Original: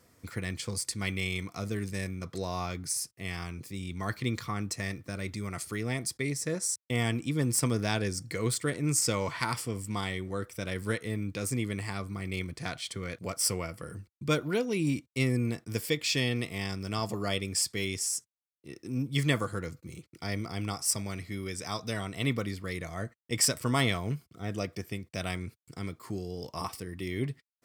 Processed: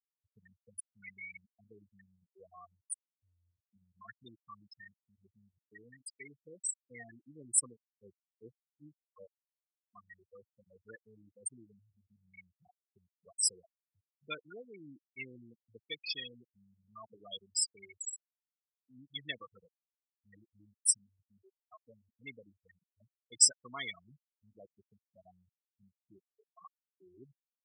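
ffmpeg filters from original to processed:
ffmpeg -i in.wav -filter_complex "[0:a]asettb=1/sr,asplit=3[link_01][link_02][link_03];[link_01]atrim=end=7.694[link_04];[link_02]atrim=start=7.69:end=9.96,asetpts=PTS-STARTPTS,afade=type=in:duration=0.004:curve=qsin,afade=type=out:start_time=2.266:duration=0.004:curve=qsin,aeval=exprs='val(0)*pow(10,-30*(0.5-0.5*cos(2*PI*2.6*n/s))/20)':channel_layout=same[link_05];[link_03]atrim=start=9.956[link_06];[link_04][link_05]acrossfade=duration=0.004:curve1=hsin:curve2=qsin[link_07];[link_07][link_06]acrossfade=duration=0.004:curve1=qsin:curve2=hsin,afftfilt=real='re*gte(hypot(re,im),0.112)':imag='im*gte(hypot(re,im),0.112)':win_size=1024:overlap=0.75,aderivative,volume=5dB" out.wav

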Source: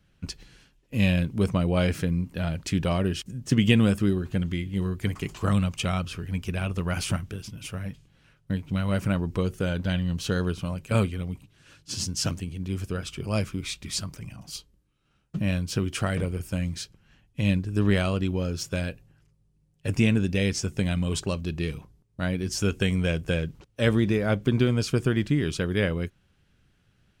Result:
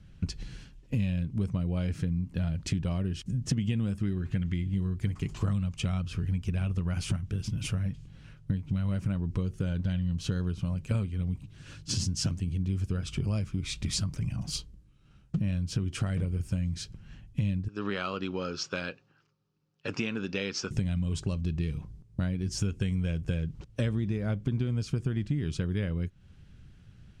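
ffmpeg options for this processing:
ffmpeg -i in.wav -filter_complex "[0:a]asettb=1/sr,asplit=3[link_01][link_02][link_03];[link_01]atrim=end=4.034[link_04];[link_02]atrim=start=4.03:end=4.54,asetpts=PTS-STARTPTS,afade=type=in:duration=0.004:curve=qsin,afade=type=out:start_time=0.506:duration=0.004:curve=qsin,equalizer=frequency=2000:width_type=o:width=1:gain=9[link_05];[link_03]atrim=start=4.536[link_06];[link_04][link_05]acrossfade=duration=0.004:curve1=hsin:curve2=qsin[link_07];[link_07][link_06]acrossfade=duration=0.004:curve1=qsin:curve2=hsin,asettb=1/sr,asplit=3[link_08][link_09][link_10];[link_08]atrim=end=17.684[link_11];[link_09]atrim=start=17.68:end=20.71,asetpts=PTS-STARTPTS,afade=type=in:duration=0.004:curve=qsin,afade=type=out:start_time=3.026:duration=0.004:curve=qsin,highpass=490,equalizer=frequency=650:width_type=q:width=4:gain=-7,equalizer=frequency=1300:width_type=q:width=4:gain=7,equalizer=frequency=2000:width_type=q:width=4:gain=-6,equalizer=frequency=3400:width_type=q:width=4:gain=-3,lowpass=frequency=5300:width=0.5412,lowpass=frequency=5300:width=1.3066[link_12];[link_10]atrim=start=20.706[link_13];[link_11][link_12]acrossfade=duration=0.004:curve1=hsin:curve2=qsin[link_14];[link_14][link_13]acrossfade=duration=0.004:curve1=qsin:curve2=hsin,lowpass=8800,bass=frequency=250:gain=11,treble=frequency=4000:gain=2,acompressor=threshold=-30dB:ratio=6,volume=2.5dB" out.wav

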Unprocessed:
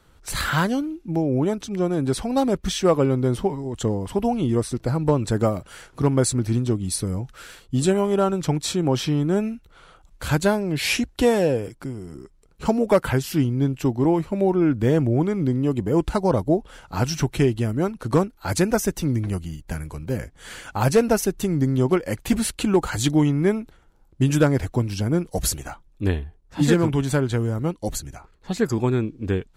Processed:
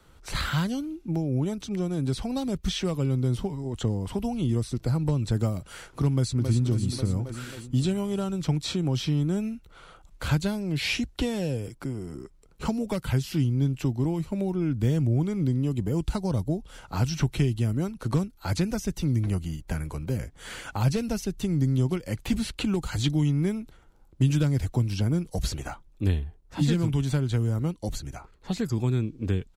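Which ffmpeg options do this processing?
ffmpeg -i in.wav -filter_complex "[0:a]asplit=2[link_01][link_02];[link_02]afade=type=in:start_time=6.11:duration=0.01,afade=type=out:start_time=6.63:duration=0.01,aecho=0:1:270|540|810|1080|1350|1620|1890|2160:0.398107|0.238864|0.143319|0.0859911|0.0515947|0.0309568|0.0185741|0.0111445[link_03];[link_01][link_03]amix=inputs=2:normalize=0,acrossover=split=4800[link_04][link_05];[link_05]acompressor=threshold=-44dB:ratio=4:attack=1:release=60[link_06];[link_04][link_06]amix=inputs=2:normalize=0,bandreject=frequency=1700:width=24,acrossover=split=200|3000[link_07][link_08][link_09];[link_08]acompressor=threshold=-32dB:ratio=6[link_10];[link_07][link_10][link_09]amix=inputs=3:normalize=0" out.wav

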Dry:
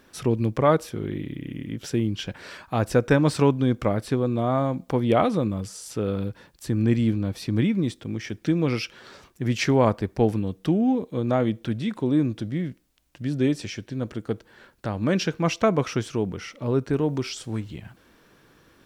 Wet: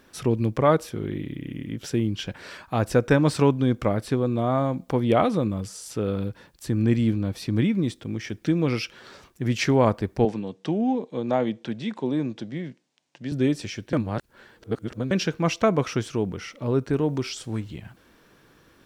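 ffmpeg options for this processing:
ffmpeg -i in.wav -filter_complex "[0:a]asettb=1/sr,asplit=3[link_01][link_02][link_03];[link_01]atrim=end=10.254[link_04];[link_02]atrim=start=10.25:end=13.32,asetpts=PTS-STARTPTS,afade=type=in:duration=0.004:curve=qsin,afade=type=out:start_time=3.066:duration=0.004:curve=qsin,highpass=frequency=150:width=0.5412,highpass=frequency=150:width=1.3066,equalizer=frequency=180:width_type=q:width=4:gain=-5,equalizer=frequency=300:width_type=q:width=4:gain=-5,equalizer=frequency=860:width_type=q:width=4:gain=4,equalizer=frequency=1300:width_type=q:width=4:gain=-5,lowpass=frequency=7500:width=0.5412,lowpass=frequency=7500:width=1.3066[link_05];[link_03]atrim=start=13.316[link_06];[link_04][link_05]acrossfade=duration=0.004:curve1=hsin:curve2=qsin[link_07];[link_07][link_06]acrossfade=duration=0.004:curve1=qsin:curve2=hsin,asplit=3[link_08][link_09][link_10];[link_08]atrim=end=13.932[link_11];[link_09]atrim=start=13.928:end=15.112,asetpts=PTS-STARTPTS,areverse[link_12];[link_10]atrim=start=15.108[link_13];[link_11][link_12]acrossfade=duration=0.004:curve1=hsin:curve2=hsin[link_14];[link_14][link_13]acrossfade=duration=0.004:curve1=hsin:curve2=hsin" out.wav

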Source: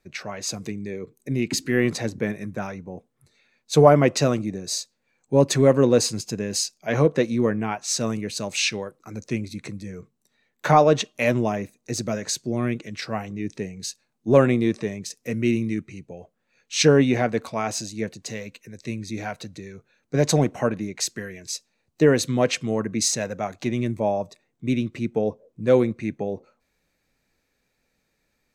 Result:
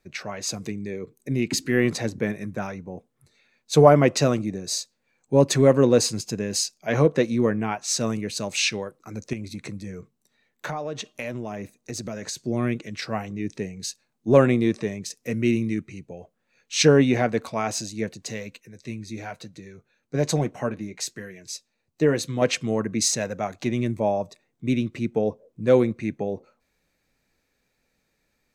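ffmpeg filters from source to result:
ffmpeg -i in.wav -filter_complex "[0:a]asettb=1/sr,asplit=3[link_01][link_02][link_03];[link_01]atrim=end=9.334[link_04];[link_02]atrim=start=9.33:end=12.37,asetpts=PTS-STARTPTS,afade=type=in:duration=0.004:curve=qsin,afade=type=out:start_time=3.036:duration=0.004:curve=qsin,acompressor=threshold=-28dB:ratio=6:attack=3.2:release=140:knee=1:detection=peak[link_05];[link_03]atrim=start=12.366[link_06];[link_04][link_05]acrossfade=duration=0.004:curve1=hsin:curve2=qsin[link_07];[link_07][link_06]acrossfade=duration=0.004:curve1=qsin:curve2=hsin,asettb=1/sr,asplit=3[link_08][link_09][link_10];[link_08]atrim=end=18.604[link_11];[link_09]atrim=start=18.6:end=22.42,asetpts=PTS-STARTPTS,afade=type=in:duration=0.004:curve=qsin,afade=type=out:start_time=3.816:duration=0.004:curve=qsin,flanger=delay=5.5:depth=3.3:regen=-57:speed=1.1:shape=triangular[link_12];[link_10]atrim=start=22.416[link_13];[link_11][link_12]acrossfade=duration=0.004:curve1=hsin:curve2=qsin[link_14];[link_14][link_13]acrossfade=duration=0.004:curve1=qsin:curve2=hsin" out.wav

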